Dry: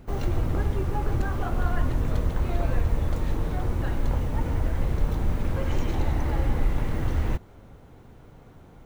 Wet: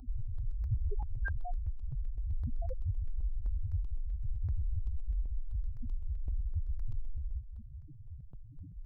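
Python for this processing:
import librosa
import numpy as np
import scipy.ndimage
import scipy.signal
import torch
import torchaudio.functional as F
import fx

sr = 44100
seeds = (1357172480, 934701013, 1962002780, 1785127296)

y = fx.over_compress(x, sr, threshold_db=-30.0, ratio=-1.0)
y = fx.low_shelf(y, sr, hz=360.0, db=-8.0)
y = fx.echo_heads(y, sr, ms=113, heads='second and third', feedback_pct=46, wet_db=-15.5)
y = fx.rotary(y, sr, hz=0.6)
y = fx.spec_topn(y, sr, count=1)
y = fx.peak_eq(y, sr, hz=760.0, db=9.0, octaves=0.3)
y = fx.notch(y, sr, hz=700.0, q=12.0)
y = fx.phaser_held(y, sr, hz=7.8, low_hz=520.0, high_hz=5300.0)
y = y * librosa.db_to_amplitude(14.5)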